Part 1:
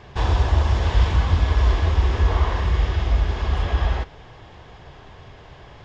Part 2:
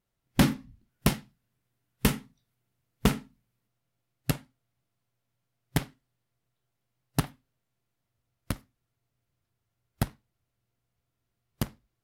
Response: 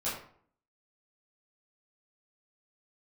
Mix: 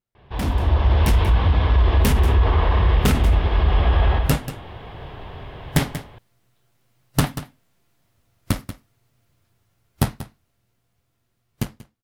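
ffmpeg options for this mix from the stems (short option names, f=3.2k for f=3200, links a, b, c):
-filter_complex "[0:a]lowpass=f=3.7k:w=0.5412,lowpass=f=3.7k:w=1.3066,equalizer=f=1.7k:w=1.5:g=-3,adelay=150,volume=-8dB,asplit=2[a][b];[b]volume=-6.5dB[c];[1:a]flanger=delay=7.9:depth=5.5:regen=-57:speed=0.44:shape=triangular,asoftclip=type=hard:threshold=-24.5dB,dynaudnorm=f=300:g=17:m=7dB,volume=-2dB,asplit=2[d][e];[e]volume=-16dB[f];[c][f]amix=inputs=2:normalize=0,aecho=0:1:186:1[g];[a][d][g]amix=inputs=3:normalize=0,dynaudnorm=f=150:g=9:m=15dB,alimiter=limit=-9dB:level=0:latency=1:release=23"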